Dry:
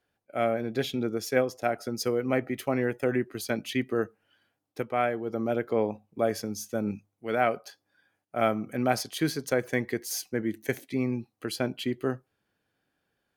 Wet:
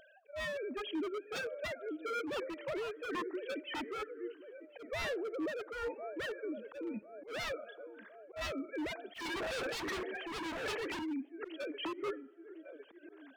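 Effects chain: formants replaced by sine waves; in parallel at -2.5 dB: upward compressor, threshold -29 dBFS; on the sum: filtered feedback delay 1055 ms, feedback 56%, low-pass 1.8 kHz, level -18.5 dB; on a send at -23 dB: reverberation RT60 1.6 s, pre-delay 6 ms; 9.14–10.99 s: on the sum: overdrive pedal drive 30 dB, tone 1.3 kHz, clips at -10 dBFS; wavefolder -22.5 dBFS; peak limiter -27 dBFS, peak gain reduction 4.5 dB; slow attack 120 ms; random flutter of the level, depth 60%; trim -3 dB

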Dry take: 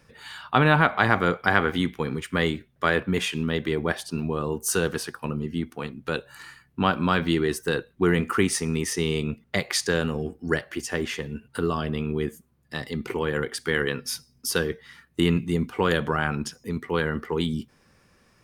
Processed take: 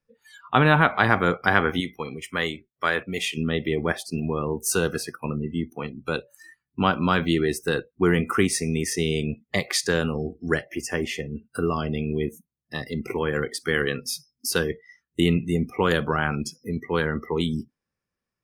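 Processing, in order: spectral noise reduction 27 dB; 1.80–3.37 s: bass shelf 450 Hz -10 dB; trim +1 dB

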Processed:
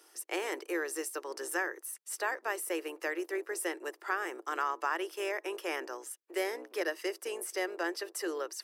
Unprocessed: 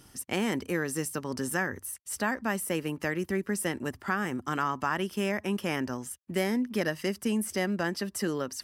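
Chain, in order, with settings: octave divider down 2 oct, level +2 dB; Chebyshev high-pass 330 Hz, order 6; band-stop 3.1 kHz, Q 21; trim -2.5 dB

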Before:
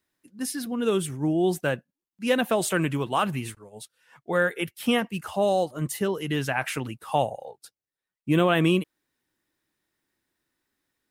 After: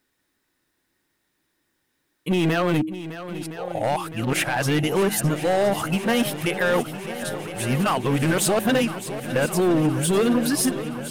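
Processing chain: reverse the whole clip; de-hum 104.9 Hz, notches 3; in parallel at -1 dB: gain riding 2 s; on the sum: peak limiter -13 dBFS, peak gain reduction 8.5 dB; hard clipper -19.5 dBFS, distortion -13 dB; on a send: shuffle delay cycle 1014 ms, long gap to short 1.5:1, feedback 70%, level -13 dB; on the sum: trim +3 dB

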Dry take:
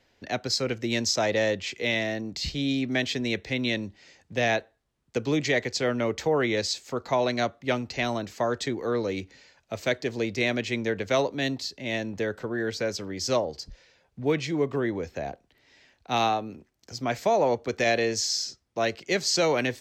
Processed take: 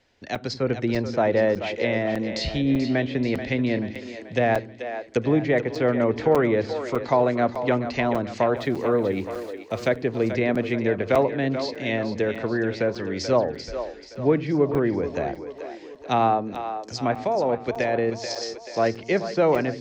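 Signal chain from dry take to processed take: 17.13–18.43 s: level held to a coarse grid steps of 9 dB; low-pass 10 kHz 12 dB/octave; level rider gain up to 5 dB; low-pass that closes with the level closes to 1.4 kHz, closed at -19 dBFS; 8.56–9.87 s: small samples zeroed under -47.5 dBFS; on a send: two-band feedback delay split 310 Hz, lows 86 ms, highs 434 ms, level -10 dB; on the sum: crackling interface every 0.60 s, samples 256, zero, from 0.35 s

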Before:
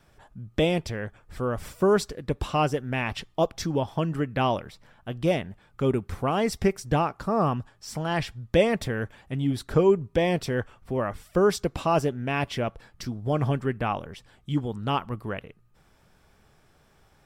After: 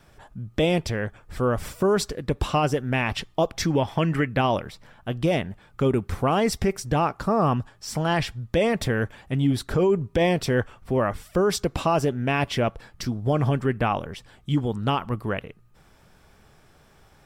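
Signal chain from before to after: 3.55–4.27 s: peaking EQ 2.1 kHz +5 dB -> +14 dB 0.72 oct; peak limiter -17.5 dBFS, peak gain reduction 9 dB; trim +5 dB

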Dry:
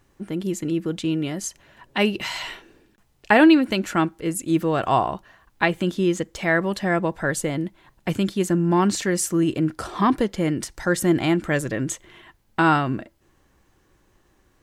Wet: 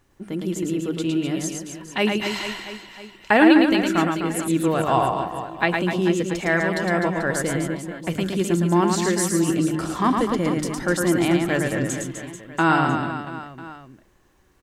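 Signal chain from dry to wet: hum notches 50/100/150/200 Hz; reverse bouncing-ball echo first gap 110 ms, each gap 1.3×, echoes 5; trim -1 dB

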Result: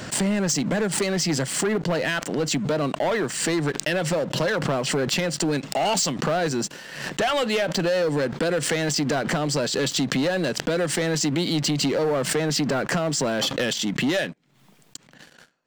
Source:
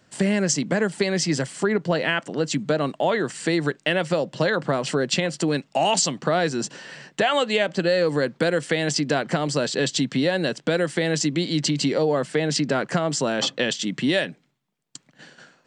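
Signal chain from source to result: waveshaping leveller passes 3; swell ahead of each attack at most 60 dB/s; trim -9.5 dB

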